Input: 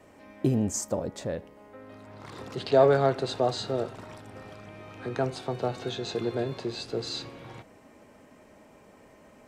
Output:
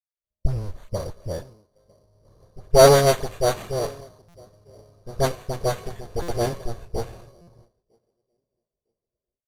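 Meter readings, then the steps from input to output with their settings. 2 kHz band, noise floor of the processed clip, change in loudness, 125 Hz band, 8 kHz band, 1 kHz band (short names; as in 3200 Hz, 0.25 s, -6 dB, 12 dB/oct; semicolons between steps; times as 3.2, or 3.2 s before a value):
+6.5 dB, under -85 dBFS, +6.0 dB, +5.5 dB, +7.0 dB, +6.0 dB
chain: minimum comb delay 1.8 ms; notch 3800 Hz, Q 6.5; expander -49 dBFS; low-pass opened by the level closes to 560 Hz, open at -21.5 dBFS; low shelf 88 Hz +11 dB; on a send: narrowing echo 0.955 s, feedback 43%, band-pass 300 Hz, level -16 dB; on the sum: AGC gain up to 12 dB; dispersion highs, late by 52 ms, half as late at 900 Hz; sample-rate reducer 5200 Hz, jitter 0%; downsampling 32000 Hz; stuck buffer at 4.28/6.22/7.41, samples 256, times 10; three-band expander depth 100%; gain -8.5 dB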